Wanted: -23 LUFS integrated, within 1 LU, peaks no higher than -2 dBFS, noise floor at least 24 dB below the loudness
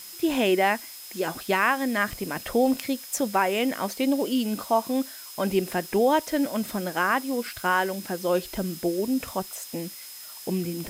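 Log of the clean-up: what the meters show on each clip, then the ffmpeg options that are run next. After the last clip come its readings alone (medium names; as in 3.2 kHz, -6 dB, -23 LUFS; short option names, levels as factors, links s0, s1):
steady tone 5.1 kHz; tone level -46 dBFS; noise floor -42 dBFS; noise floor target -50 dBFS; loudness -26.0 LUFS; peak level -9.0 dBFS; loudness target -23.0 LUFS
-> -af "bandreject=f=5100:w=30"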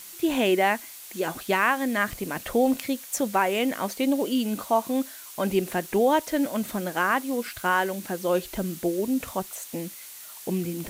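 steady tone not found; noise floor -43 dBFS; noise floor target -50 dBFS
-> -af "afftdn=nr=7:nf=-43"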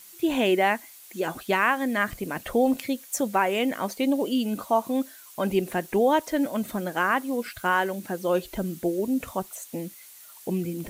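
noise floor -48 dBFS; noise floor target -50 dBFS
-> -af "afftdn=nr=6:nf=-48"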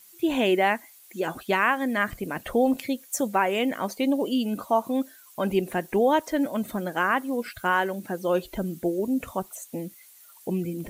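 noise floor -52 dBFS; loudness -26.0 LUFS; peak level -9.0 dBFS; loudness target -23.0 LUFS
-> -af "volume=1.41"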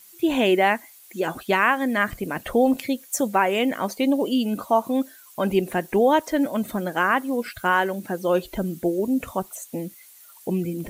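loudness -23.0 LUFS; peak level -6.0 dBFS; noise floor -49 dBFS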